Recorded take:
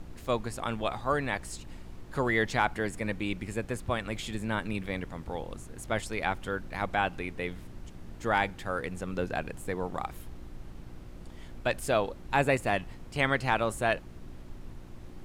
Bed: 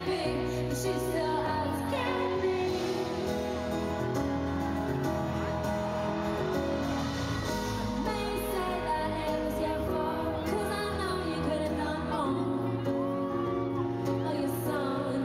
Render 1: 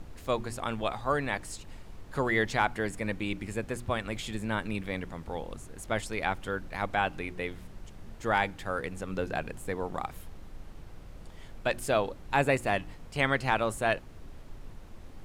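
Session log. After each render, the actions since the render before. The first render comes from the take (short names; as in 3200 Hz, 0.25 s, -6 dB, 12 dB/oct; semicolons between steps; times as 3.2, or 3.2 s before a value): de-hum 60 Hz, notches 6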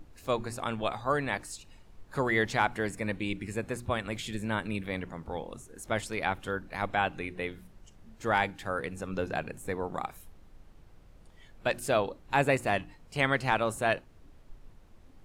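noise print and reduce 9 dB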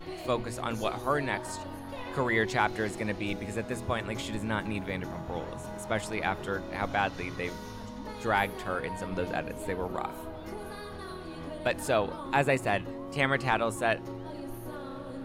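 add bed -9.5 dB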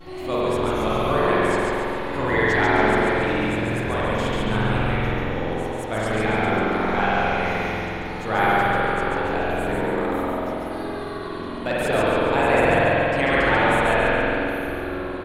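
frequency-shifting echo 0.14 s, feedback 44%, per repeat -89 Hz, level -3 dB; spring tank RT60 3.3 s, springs 46 ms, chirp 40 ms, DRR -7.5 dB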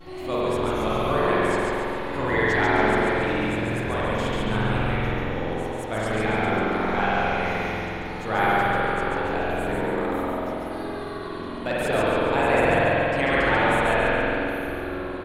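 gain -2 dB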